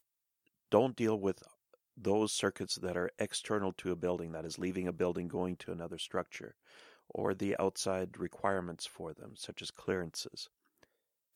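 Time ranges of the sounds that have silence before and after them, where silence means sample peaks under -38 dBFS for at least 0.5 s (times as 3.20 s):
0.72–1.32 s
2.05–6.48 s
7.10–10.44 s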